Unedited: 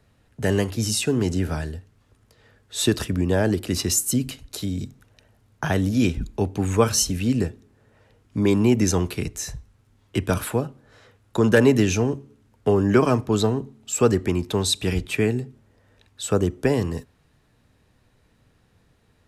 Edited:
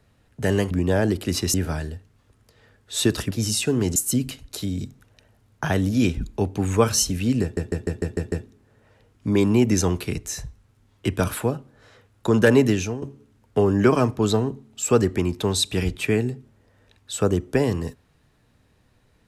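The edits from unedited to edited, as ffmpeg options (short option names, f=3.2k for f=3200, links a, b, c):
-filter_complex "[0:a]asplit=12[a][b][c][d][e][f][g][h][i][j][k][l];[a]atrim=end=0.712[m];[b]atrim=start=3.128:end=3.962[n];[c]atrim=start=1.358:end=3.132[o];[d]atrim=start=0.708:end=1.362[p];[e]atrim=start=3.958:end=7.572[q];[f]atrim=start=7.418:end=7.572[r];[g]atrim=start=7.418:end=7.572[s];[h]atrim=start=7.418:end=7.572[t];[i]atrim=start=7.418:end=7.572[u];[j]atrim=start=7.418:end=7.572[v];[k]atrim=start=7.418:end=12.12,asetpts=PTS-STARTPTS,afade=t=out:st=4.312:d=0.39:silence=0.251189[w];[l]atrim=start=12.12,asetpts=PTS-STARTPTS,afade=t=in:d=0.004:c=hsin:silence=0.251189[x];[m][n]acrossfade=d=0.004:c1=hsin:c2=hsin[y];[y][o]acrossfade=d=0.004:c1=hsin:c2=hsin[z];[z][p]acrossfade=d=0.004:c1=hsin:c2=hsin[aa];[aa][q]acrossfade=d=0.004:c1=hsin:c2=hsin[ab];[ab][r]acrossfade=d=0.004:c1=hsin:c2=hsin[ac];[ac][s]acrossfade=d=0.004:c1=hsin:c2=hsin[ad];[ad][t]acrossfade=d=0.004:c1=hsin:c2=hsin[ae];[ae][u]acrossfade=d=0.004:c1=hsin:c2=hsin[af];[af][v]acrossfade=d=0.004:c1=hsin:c2=hsin[ag];[w][x]concat=n=2:v=0:a=1[ah];[ag][ah]acrossfade=d=0.004:c1=hsin:c2=hsin"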